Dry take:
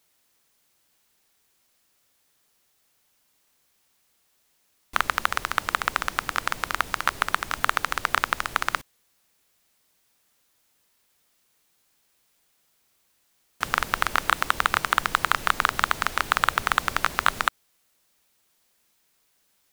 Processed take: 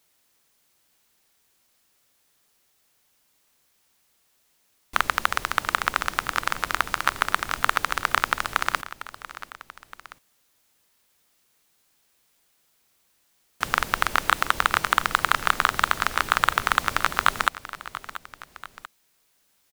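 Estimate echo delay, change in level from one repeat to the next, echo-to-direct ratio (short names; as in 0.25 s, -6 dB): 0.686 s, -5.0 dB, -14.0 dB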